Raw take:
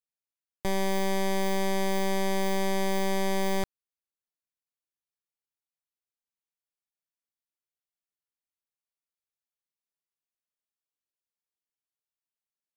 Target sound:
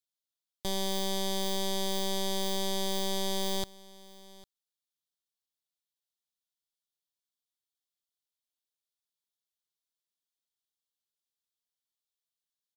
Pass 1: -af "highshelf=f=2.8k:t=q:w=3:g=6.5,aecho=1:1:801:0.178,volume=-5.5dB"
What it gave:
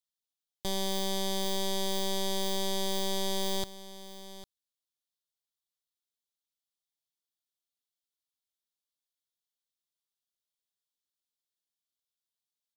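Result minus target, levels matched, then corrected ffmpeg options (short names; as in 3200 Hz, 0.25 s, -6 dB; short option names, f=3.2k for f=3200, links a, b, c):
echo-to-direct +6 dB
-af "highshelf=f=2.8k:t=q:w=3:g=6.5,aecho=1:1:801:0.0891,volume=-5.5dB"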